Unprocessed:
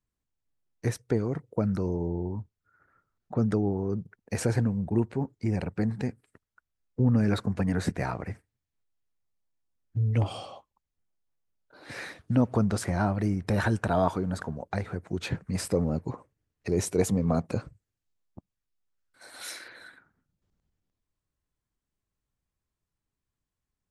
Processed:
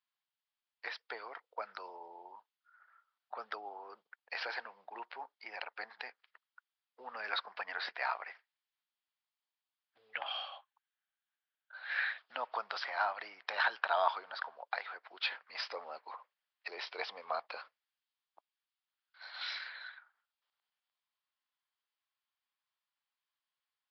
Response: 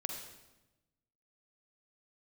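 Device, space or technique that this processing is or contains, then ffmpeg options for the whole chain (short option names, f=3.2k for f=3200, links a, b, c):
musical greeting card: -filter_complex "[0:a]asettb=1/sr,asplit=3[a][b][c];[a]atrim=end=10.134[d];[b]atrim=start=10.13:end=12.18,asetpts=PTS-STARTPTS,afade=t=in:d=0.004:c=qsin,afade=t=out:st=2.046:d=0.004:c=qsin,equalizer=f=125:t=o:w=0.33:g=12,equalizer=f=400:t=o:w=0.33:g=-11,equalizer=f=1k:t=o:w=0.33:g=-5,equalizer=f=1.6k:t=o:w=0.33:g=10,equalizer=f=5k:t=o:w=0.33:g=-12[e];[c]atrim=start=12.176[f];[d][e]acrossfade=d=0.004:c1=hsin:c2=qsin[g];[g][f]acrossfade=d=0.004:c1=qsin:c2=hsin,aresample=11025,aresample=44100,highpass=f=830:w=0.5412,highpass=f=830:w=1.3066,equalizer=f=3.2k:t=o:w=0.38:g=5,volume=1dB"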